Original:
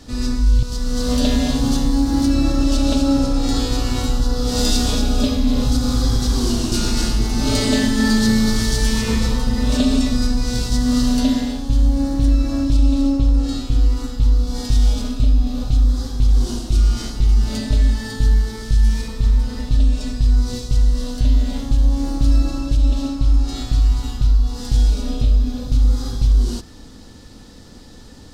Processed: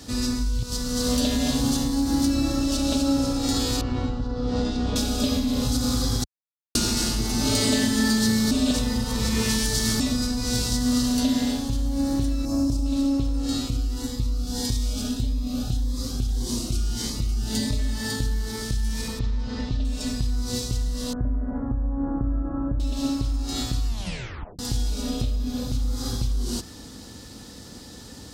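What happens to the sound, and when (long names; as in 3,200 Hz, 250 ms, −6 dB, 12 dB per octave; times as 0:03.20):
0:03.81–0:04.96: head-to-tape spacing loss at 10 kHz 36 dB
0:06.24–0:06.75: silence
0:08.51–0:10.00: reverse
0:12.45–0:12.86: flat-topped bell 2,400 Hz −11.5 dB
0:13.68–0:17.79: phaser whose notches keep moving one way rising 1.7 Hz
0:19.19–0:19.85: Bessel low-pass filter 4,200 Hz, order 6
0:21.13–0:22.80: Butterworth low-pass 1,600 Hz 48 dB per octave
0:23.87: tape stop 0.72 s
whole clip: high-shelf EQ 5,900 Hz +9 dB; downward compressor 4 to 1, threshold −18 dBFS; high-pass filter 61 Hz 12 dB per octave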